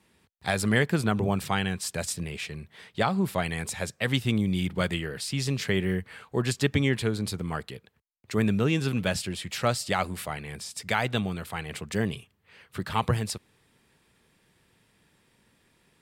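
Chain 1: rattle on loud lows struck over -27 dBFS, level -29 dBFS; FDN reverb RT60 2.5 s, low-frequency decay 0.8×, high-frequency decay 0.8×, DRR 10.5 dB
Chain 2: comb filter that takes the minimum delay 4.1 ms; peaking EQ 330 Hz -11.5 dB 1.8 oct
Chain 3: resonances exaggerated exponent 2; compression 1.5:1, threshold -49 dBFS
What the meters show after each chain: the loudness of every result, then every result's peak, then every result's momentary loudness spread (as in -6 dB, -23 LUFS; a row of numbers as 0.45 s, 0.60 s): -28.0 LUFS, -35.5 LUFS, -38.0 LUFS; -9.0 dBFS, -15.5 dBFS, -21.0 dBFS; 12 LU, 7 LU, 7 LU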